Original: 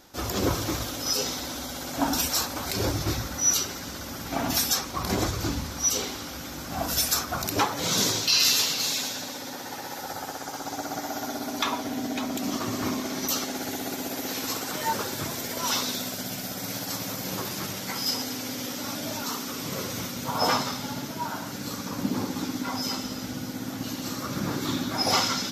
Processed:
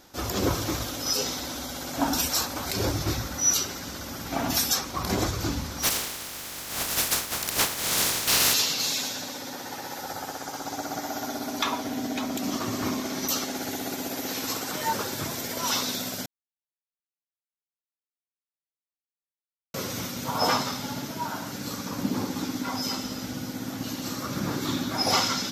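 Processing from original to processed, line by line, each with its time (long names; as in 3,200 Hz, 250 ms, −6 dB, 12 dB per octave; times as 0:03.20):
0:05.82–0:08.53: compressing power law on the bin magnitudes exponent 0.2
0:16.26–0:19.74: silence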